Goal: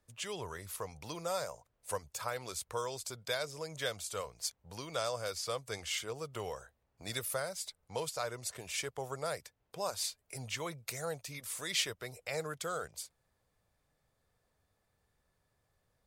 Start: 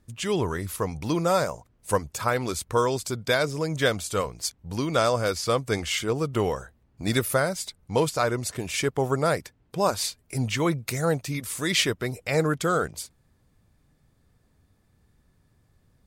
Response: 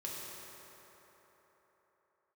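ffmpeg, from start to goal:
-filter_complex "[0:a]acrossover=split=160|3000[a][b][c];[b]acompressor=threshold=-40dB:ratio=1.5[d];[a][d][c]amix=inputs=3:normalize=0,lowshelf=f=390:t=q:w=1.5:g=-8.5,volume=-7.5dB"

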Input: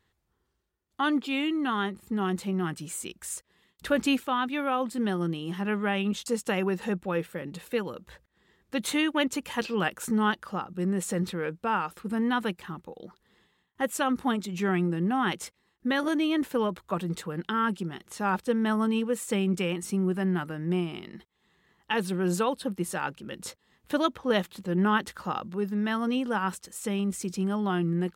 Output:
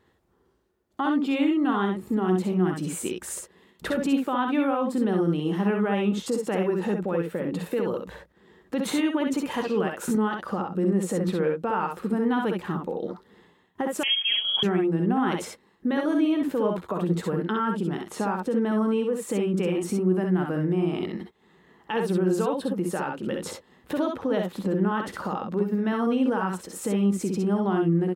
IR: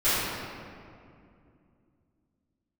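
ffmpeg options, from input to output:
-filter_complex "[0:a]equalizer=f=410:w=0.33:g=12.5,alimiter=limit=-18.5dB:level=0:latency=1:release=201,aecho=1:1:54|65:0.355|0.596,asettb=1/sr,asplit=3[a][b][c];[a]atrim=end=14.034[d];[b]atrim=start=14.03:end=14.63,asetpts=PTS-STARTPTS,afade=t=in:d=0.004:c=qsin,afade=t=out:st=0.596:d=0.004:c=qsin,lowpass=f=3k:t=q:w=0.5098,lowpass=f=3k:t=q:w=0.6013,lowpass=f=3k:t=q:w=0.9,lowpass=f=3k:t=q:w=2.563,afreqshift=-3500[e];[c]atrim=start=14.626[f];[d][e]acrossfade=d=0.004:c1=hsin:c2=qsin[g];[g][f]acrossfade=d=0.004:c1=qsin:c2=hsin"

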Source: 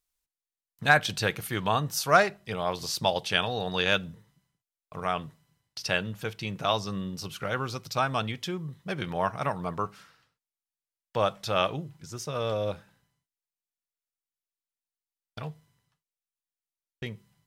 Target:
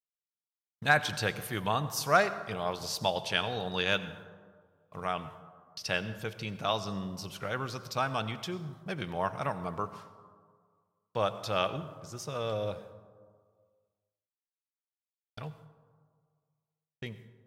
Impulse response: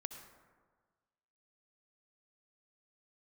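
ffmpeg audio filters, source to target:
-filter_complex "[0:a]agate=range=-33dB:threshold=-46dB:ratio=3:detection=peak,asplit=2[a][b];[1:a]atrim=start_sample=2205,asetrate=35721,aresample=44100[c];[b][c]afir=irnorm=-1:irlink=0,volume=-0.5dB[d];[a][d]amix=inputs=2:normalize=0,volume=-8.5dB"

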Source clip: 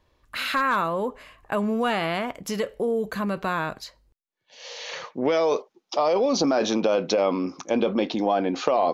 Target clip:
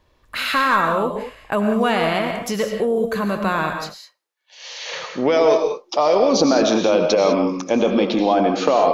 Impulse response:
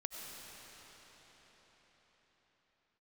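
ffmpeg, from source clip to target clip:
-filter_complex "[0:a]asettb=1/sr,asplit=3[a][b][c];[a]atrim=end=3.764[d];[b]atrim=start=3.76:end=4.86,asetpts=PTS-STARTPTS,afade=t=in:d=0.004:c=qsin,afade=t=out:st=1.096:d=0.004:c=qsin,highpass=910[e];[c]atrim=start=4.856[f];[d][e]acrossfade=d=0.004:c1=hsin:c2=qsin[g];[g][f]acrossfade=d=0.004:c1=qsin:c2=hsin[h];[1:a]atrim=start_sample=2205,afade=t=out:st=0.26:d=0.01,atrim=end_sample=11907[i];[h][i]afir=irnorm=-1:irlink=0,volume=8.5dB"

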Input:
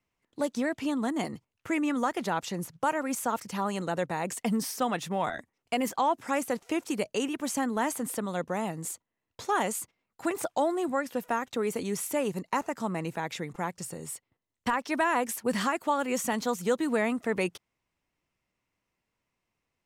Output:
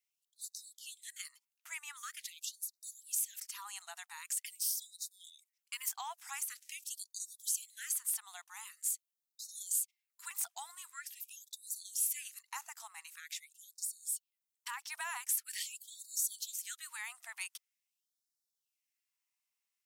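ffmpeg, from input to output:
-af "aderivative,afftfilt=real='re*gte(b*sr/1024,660*pow(3700/660,0.5+0.5*sin(2*PI*0.45*pts/sr)))':imag='im*gte(b*sr/1024,660*pow(3700/660,0.5+0.5*sin(2*PI*0.45*pts/sr)))':win_size=1024:overlap=0.75,volume=1dB"

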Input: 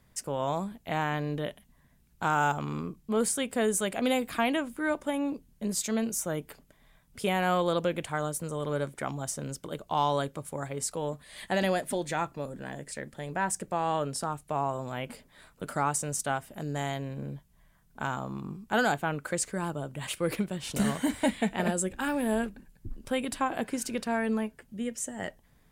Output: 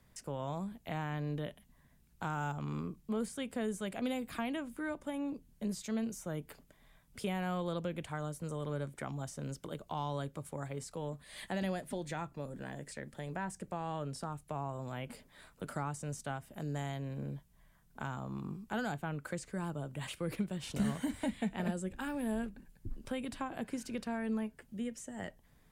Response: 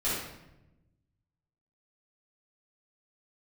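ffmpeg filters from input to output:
-filter_complex "[0:a]acrossover=split=220[a][b];[b]acompressor=threshold=-41dB:ratio=2[c];[a][c]amix=inputs=2:normalize=0,acrossover=split=5200[d][e];[e]alimiter=level_in=15dB:limit=-24dB:level=0:latency=1:release=100,volume=-15dB[f];[d][f]amix=inputs=2:normalize=0,volume=-2.5dB"

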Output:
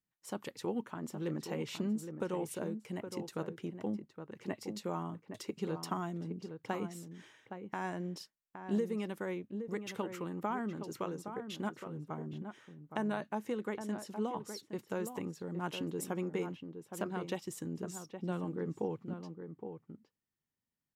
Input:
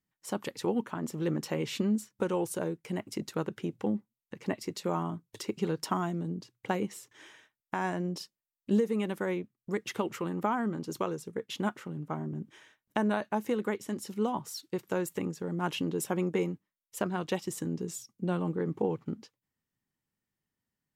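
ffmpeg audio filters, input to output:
-filter_complex "[0:a]asettb=1/sr,asplit=3[a][b][c];[a]atrim=end=13.354[d];[b]atrim=start=13.35:end=14.59,asetpts=PTS-STARTPTS,afade=t=in:d=0.004:c=qsin,afade=t=out:st=1.236:d=0.004:c=qsin,lowpass=12k[e];[c]atrim=start=14.586[f];[d][e]acrossfade=d=0.004:c1=hsin:c2=qsin[g];[g][f]acrossfade=d=0.004:c1=qsin:c2=hsin,asplit=2[h][i];[i]adelay=816.3,volume=-8dB,highshelf=f=4k:g=-18.4[j];[h][j]amix=inputs=2:normalize=0,volume=-6.5dB"

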